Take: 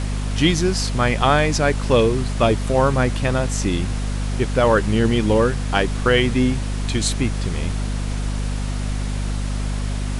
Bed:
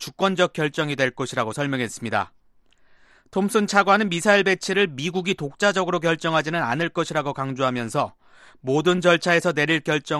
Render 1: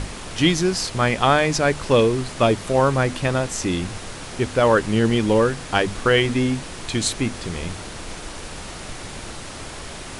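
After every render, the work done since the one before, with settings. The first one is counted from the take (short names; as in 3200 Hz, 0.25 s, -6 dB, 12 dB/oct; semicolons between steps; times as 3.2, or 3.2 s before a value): notches 50/100/150/200/250 Hz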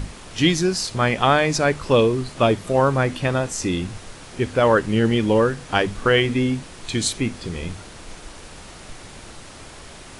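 noise print and reduce 6 dB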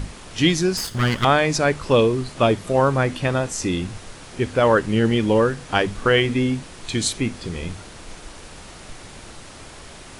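0.77–1.25 minimum comb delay 0.61 ms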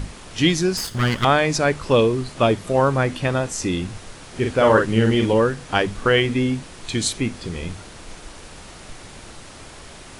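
4.31–5.33 doubler 45 ms -4 dB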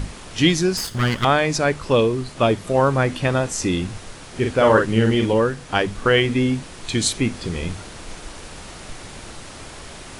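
vocal rider within 3 dB 2 s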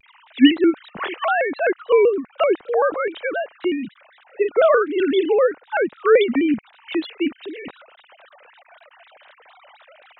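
sine-wave speech; shaped vibrato square 3.9 Hz, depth 160 cents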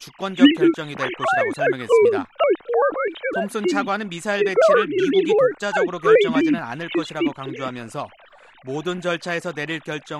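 add bed -6.5 dB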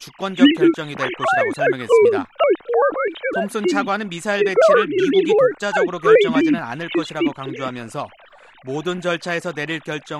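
gain +2 dB; limiter -2 dBFS, peak gain reduction 3 dB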